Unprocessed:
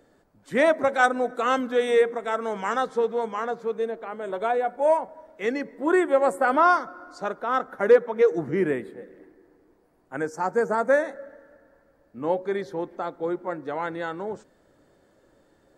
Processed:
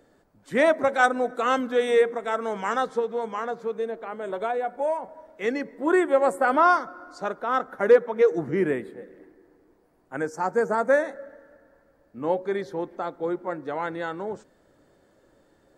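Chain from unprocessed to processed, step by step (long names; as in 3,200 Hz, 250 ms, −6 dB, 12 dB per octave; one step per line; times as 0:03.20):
0:02.99–0:05.04: downward compressor 3 to 1, threshold −24 dBFS, peak gain reduction 7 dB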